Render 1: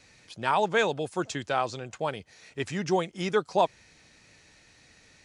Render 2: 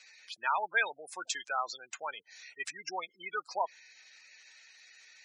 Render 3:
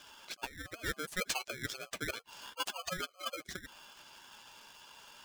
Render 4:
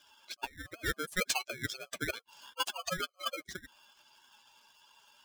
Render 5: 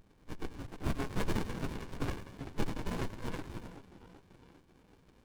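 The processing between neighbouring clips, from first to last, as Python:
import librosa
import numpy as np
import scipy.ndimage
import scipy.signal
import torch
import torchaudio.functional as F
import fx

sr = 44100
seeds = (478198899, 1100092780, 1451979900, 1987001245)

y1 = fx.spec_gate(x, sr, threshold_db=-15, keep='strong')
y1 = scipy.signal.sosfilt(scipy.signal.butter(2, 1500.0, 'highpass', fs=sr, output='sos'), y1)
y1 = y1 * librosa.db_to_amplitude(3.5)
y2 = fx.high_shelf(y1, sr, hz=2000.0, db=-11.0)
y2 = fx.over_compress(y2, sr, threshold_db=-41.0, ratio=-0.5)
y2 = y2 * np.sign(np.sin(2.0 * np.pi * 920.0 * np.arange(len(y2)) / sr))
y2 = y2 * librosa.db_to_amplitude(3.5)
y3 = fx.bin_expand(y2, sr, power=1.5)
y3 = y3 * librosa.db_to_amplitude(5.0)
y4 = fx.partial_stretch(y3, sr, pct=85)
y4 = fx.echo_split(y4, sr, split_hz=890.0, low_ms=386, high_ms=99, feedback_pct=52, wet_db=-8.5)
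y4 = fx.running_max(y4, sr, window=65)
y4 = y4 * librosa.db_to_amplitude(6.5)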